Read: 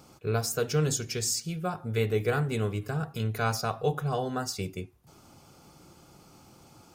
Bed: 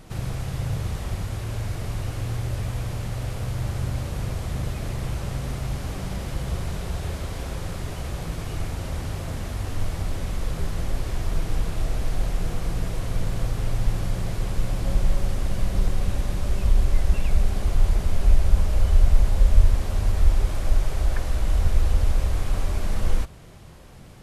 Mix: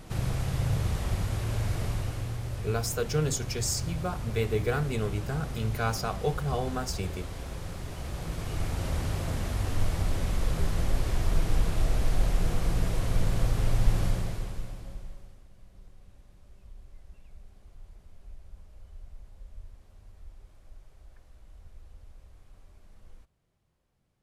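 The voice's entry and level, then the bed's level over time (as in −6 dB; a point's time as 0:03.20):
2.40 s, −1.5 dB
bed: 0:01.83 −0.5 dB
0:02.40 −7 dB
0:07.85 −7 dB
0:08.87 −0.5 dB
0:14.07 −0.5 dB
0:15.48 −30 dB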